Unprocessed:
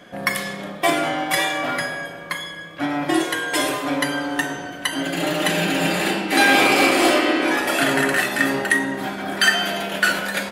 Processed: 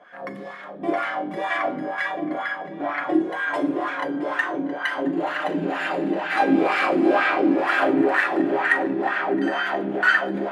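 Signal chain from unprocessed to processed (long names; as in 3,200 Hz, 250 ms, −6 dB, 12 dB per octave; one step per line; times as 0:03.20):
feedback echo with a low-pass in the loop 669 ms, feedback 68%, low-pass 4,900 Hz, level −3 dB
auto-filter band-pass sine 2.1 Hz 260–1,600 Hz
level +2.5 dB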